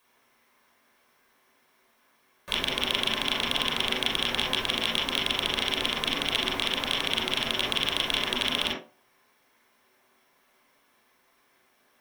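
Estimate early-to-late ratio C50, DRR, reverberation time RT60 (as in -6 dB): 5.0 dB, -3.0 dB, 0.40 s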